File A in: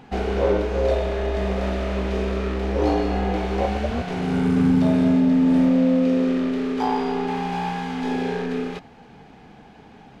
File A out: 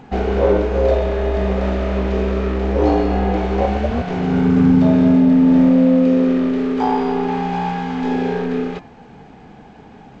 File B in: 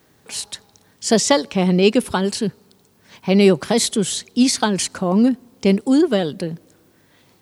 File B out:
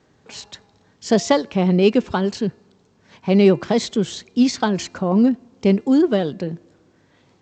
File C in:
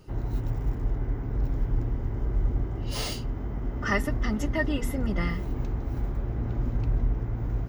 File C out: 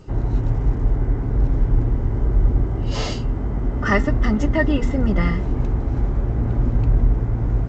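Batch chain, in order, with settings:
high-shelf EQ 2,500 Hz −8 dB
hum removal 344.1 Hz, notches 8
G.722 64 kbit/s 16,000 Hz
normalise the peak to −3 dBFS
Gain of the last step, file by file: +5.5, 0.0, +9.0 decibels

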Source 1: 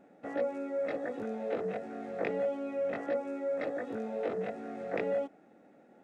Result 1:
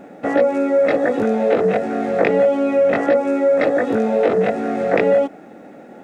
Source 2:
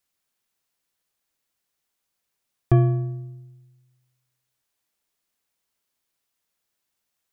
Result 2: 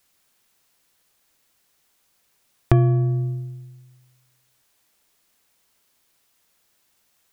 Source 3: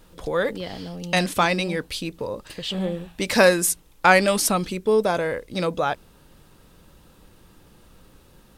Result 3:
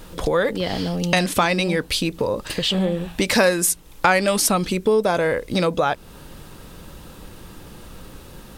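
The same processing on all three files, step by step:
downward compressor 2.5 to 1, threshold −32 dBFS
normalise the peak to −2 dBFS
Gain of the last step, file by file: +20.0, +13.0, +12.0 decibels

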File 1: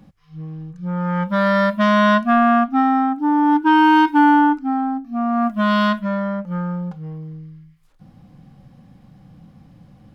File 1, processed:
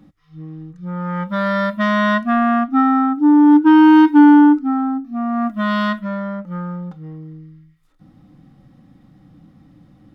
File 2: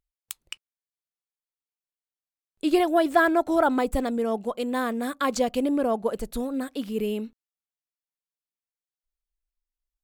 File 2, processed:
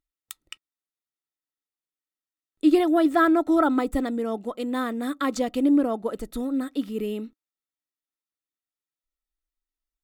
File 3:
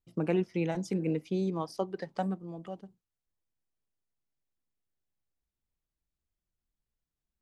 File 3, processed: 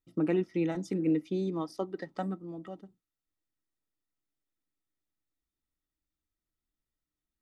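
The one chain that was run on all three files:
hollow resonant body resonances 300/1,300/1,900/3,600 Hz, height 11 dB, ringing for 45 ms
level −3.5 dB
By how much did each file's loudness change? +3.0, +1.5, +0.5 LU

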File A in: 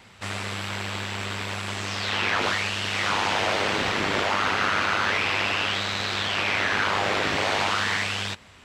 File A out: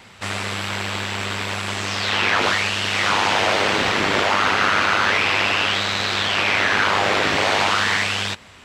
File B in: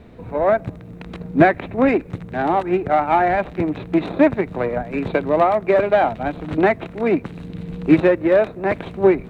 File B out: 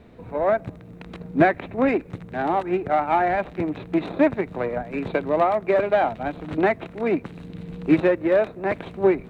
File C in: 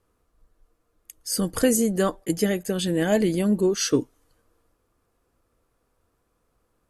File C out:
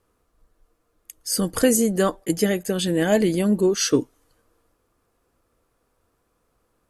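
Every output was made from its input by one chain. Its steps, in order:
low-shelf EQ 150 Hz −3.5 dB
normalise the peak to −6 dBFS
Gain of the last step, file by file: +5.5, −3.5, +2.5 decibels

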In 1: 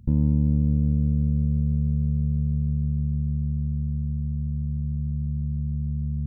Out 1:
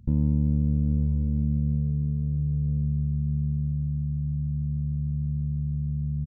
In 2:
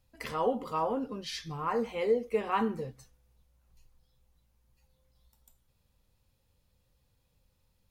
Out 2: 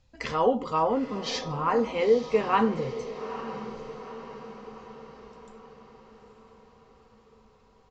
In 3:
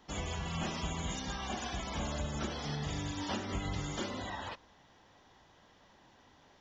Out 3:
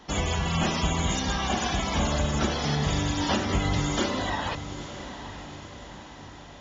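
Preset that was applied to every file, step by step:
downsampling to 16,000 Hz
feedback delay with all-pass diffusion 890 ms, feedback 53%, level −12 dB
loudness normalisation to −27 LKFS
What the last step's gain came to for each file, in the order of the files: −2.0, +6.0, +11.0 decibels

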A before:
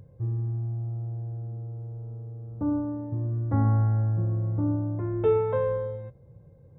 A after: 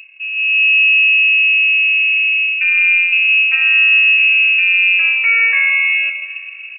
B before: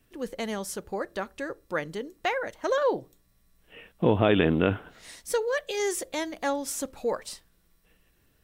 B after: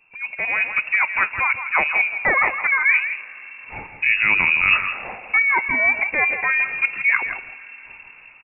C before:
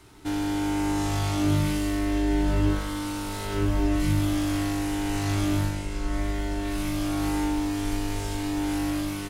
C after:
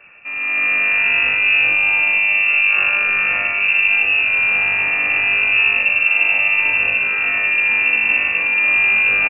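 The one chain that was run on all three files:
reversed playback
downward compressor 6 to 1, threshold −33 dBFS
reversed playback
notch filter 570 Hz, Q 12
on a send: single-tap delay 164 ms −9.5 dB
on the sum: dense smooth reverb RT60 4.4 s, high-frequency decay 0.55×, DRR 18 dB
automatic gain control gain up to 11.5 dB
voice inversion scrambler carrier 2,700 Hz
low-shelf EQ 220 Hz −4.5 dB
normalise the peak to −3 dBFS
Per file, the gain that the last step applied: +9.5, +6.5, +6.5 decibels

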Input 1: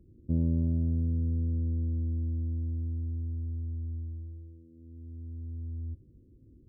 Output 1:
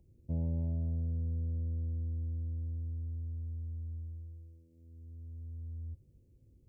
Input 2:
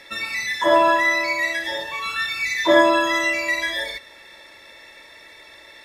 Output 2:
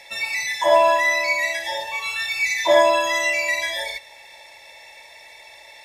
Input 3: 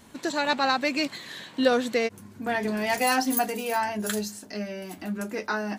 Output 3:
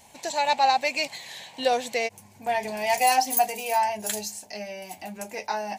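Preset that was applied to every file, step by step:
drawn EQ curve 140 Hz 0 dB, 300 Hz −9 dB, 830 Hz +13 dB, 1,300 Hz −8 dB, 2,300 Hz +9 dB, 3,500 Hz +4 dB, 6,600 Hz +10 dB, 11,000 Hz +8 dB
level −5 dB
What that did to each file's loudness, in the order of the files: −5.5, 0.0, +1.5 LU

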